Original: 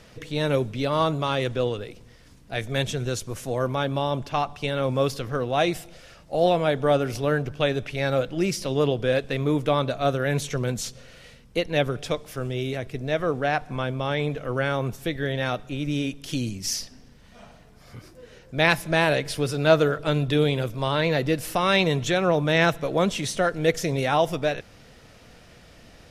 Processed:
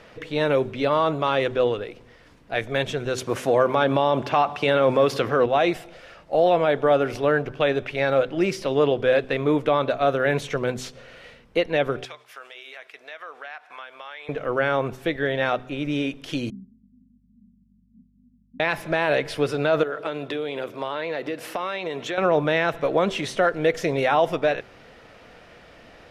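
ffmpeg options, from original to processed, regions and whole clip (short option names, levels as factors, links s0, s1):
-filter_complex "[0:a]asettb=1/sr,asplit=3[s0][s1][s2];[s0]atrim=end=3.184[s3];[s1]atrim=start=3.18:end=5.46,asetpts=PTS-STARTPTS,afade=t=in:d=0.004:c=qsin,afade=t=out:st=2.276:d=0.004:c=qsin,acontrast=81,highpass=110[s4];[s2]atrim=start=5.456[s5];[s3][s4]acrossfade=d=0.004:c1=hsin:c2=qsin[s6];[s6][s5]acrossfade=d=0.004:c1=qsin:c2=hsin,asettb=1/sr,asplit=3[s7][s8][s9];[s7]atrim=end=12.054[s10];[s8]atrim=start=12.05:end=14.29,asetpts=PTS-STARTPTS,afade=t=in:d=0.004:c=qsin,afade=t=out:st=2.236:d=0.004:c=qsin,agate=range=0.0224:threshold=0.01:ratio=3:release=100:detection=peak,highpass=1200,acompressor=threshold=0.01:ratio=4:attack=3.2:release=140:knee=1:detection=peak[s11];[s9]atrim=start=14.286[s12];[s10][s11]acrossfade=d=0.004:c1=hsin:c2=qsin[s13];[s13][s12]acrossfade=d=0.004:c1=qsin:c2=hsin,asettb=1/sr,asplit=3[s14][s15][s16];[s14]atrim=end=16.504[s17];[s15]atrim=start=16.5:end=18.6,asetpts=PTS-STARTPTS,afade=t=in:d=0.004:c=qsin,afade=t=out:st=2.096:d=0.004:c=qsin,asuperpass=centerf=210:order=12:qfactor=2.5,aeval=exprs='val(0)+0.00112*(sin(2*PI*50*n/s)+sin(2*PI*2*50*n/s)/2+sin(2*PI*3*50*n/s)/3+sin(2*PI*4*50*n/s)/4+sin(2*PI*5*50*n/s)/5)':c=same[s18];[s16]atrim=start=18.596[s19];[s17][s18]acrossfade=d=0.004:c1=hsin:c2=qsin[s20];[s20][s19]acrossfade=d=0.004:c1=qsin:c2=hsin,asettb=1/sr,asplit=3[s21][s22][s23];[s21]atrim=end=19.834[s24];[s22]atrim=start=19.83:end=22.18,asetpts=PTS-STARTPTS,afade=t=in:d=0.004:c=qsin,afade=t=out:st=2.346:d=0.004:c=qsin,highpass=230,acompressor=threshold=0.0447:ratio=12:attack=3.2:release=140:knee=1:detection=peak[s25];[s23]atrim=start=22.176[s26];[s24][s25]acrossfade=d=0.004:c1=hsin:c2=qsin[s27];[s27][s26]acrossfade=d=0.004:c1=qsin:c2=hsin,bass=f=250:g=-10,treble=f=4000:g=-14,bandreject=f=127.8:t=h:w=4,bandreject=f=255.6:t=h:w=4,bandreject=f=383.4:t=h:w=4,alimiter=level_in=5.01:limit=0.891:release=50:level=0:latency=1,volume=0.376"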